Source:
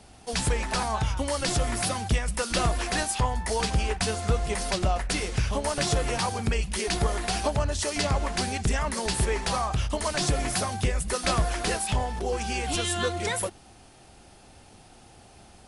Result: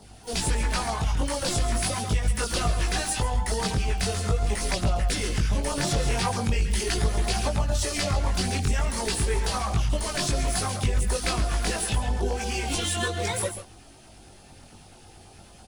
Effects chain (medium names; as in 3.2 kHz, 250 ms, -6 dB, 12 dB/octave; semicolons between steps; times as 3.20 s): harmony voices +12 st -17 dB; on a send: delay 137 ms -9.5 dB; on the sum: compression, threshold -24 dBFS, peak gain reduction 6 dB; LFO notch saw down 9.1 Hz 360–2800 Hz; chorus voices 2, 0.41 Hz, delay 20 ms, depth 1.8 ms; trim +5.5 dB